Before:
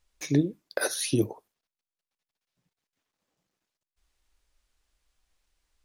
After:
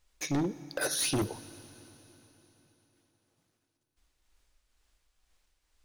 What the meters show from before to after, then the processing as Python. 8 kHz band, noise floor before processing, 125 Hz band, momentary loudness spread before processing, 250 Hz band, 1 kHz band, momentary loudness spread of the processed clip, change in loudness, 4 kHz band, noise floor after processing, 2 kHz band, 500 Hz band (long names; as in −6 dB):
0.0 dB, below −85 dBFS, −6.0 dB, 5 LU, −5.5 dB, +2.0 dB, 19 LU, −3.5 dB, +0.5 dB, −81 dBFS, −2.0 dB, −5.0 dB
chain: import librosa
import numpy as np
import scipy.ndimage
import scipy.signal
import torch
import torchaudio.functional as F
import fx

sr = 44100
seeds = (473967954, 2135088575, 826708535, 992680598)

y = fx.tremolo_shape(x, sr, shape='triangle', hz=2.1, depth_pct=45)
y = np.clip(y, -10.0 ** (-29.5 / 20.0), 10.0 ** (-29.5 / 20.0))
y = fx.rev_fdn(y, sr, rt60_s=3.9, lf_ratio=1.0, hf_ratio=0.95, size_ms=63.0, drr_db=14.5)
y = F.gain(torch.from_numpy(y), 3.5).numpy()